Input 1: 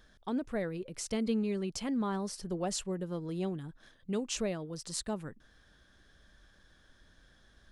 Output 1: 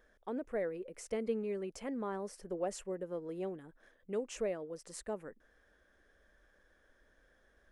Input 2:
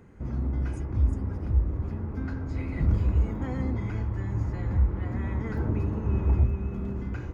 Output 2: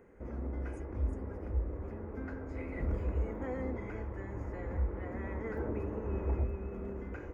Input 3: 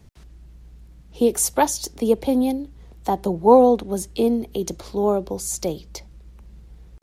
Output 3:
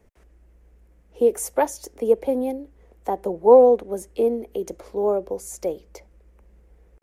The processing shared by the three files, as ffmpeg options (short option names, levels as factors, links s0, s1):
-af "equalizer=f=125:t=o:w=1:g=-11,equalizer=f=500:t=o:w=1:g=10,equalizer=f=2000:t=o:w=1:g=6,equalizer=f=4000:t=o:w=1:g=-10,volume=0.422"